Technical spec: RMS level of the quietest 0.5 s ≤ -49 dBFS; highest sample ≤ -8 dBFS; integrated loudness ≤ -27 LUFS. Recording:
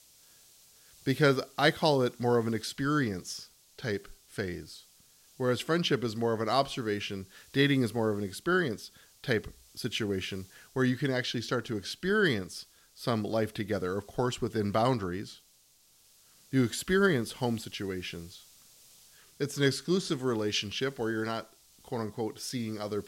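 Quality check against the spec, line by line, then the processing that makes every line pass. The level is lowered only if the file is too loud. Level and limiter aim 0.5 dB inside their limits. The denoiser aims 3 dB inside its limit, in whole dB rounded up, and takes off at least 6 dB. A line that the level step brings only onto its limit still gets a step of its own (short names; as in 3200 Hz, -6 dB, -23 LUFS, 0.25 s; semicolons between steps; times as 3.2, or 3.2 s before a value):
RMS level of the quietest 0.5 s -64 dBFS: OK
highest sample -9.0 dBFS: OK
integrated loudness -30.5 LUFS: OK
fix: none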